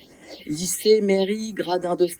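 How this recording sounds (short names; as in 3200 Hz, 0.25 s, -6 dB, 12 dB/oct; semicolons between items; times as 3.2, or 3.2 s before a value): phasing stages 4, 1.2 Hz, lowest notch 430–4000 Hz; tremolo triangle 10 Hz, depth 45%; Opus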